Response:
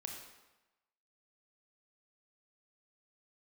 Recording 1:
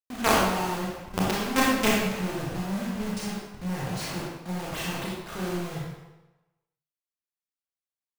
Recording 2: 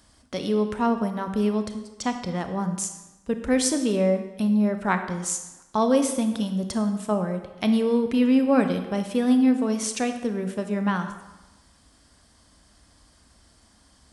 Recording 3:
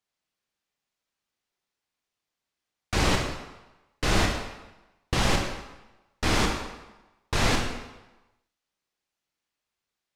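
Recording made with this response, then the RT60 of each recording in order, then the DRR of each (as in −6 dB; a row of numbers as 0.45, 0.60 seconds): 3; 1.1, 1.0, 1.0 seconds; −5.5, 7.0, 1.5 decibels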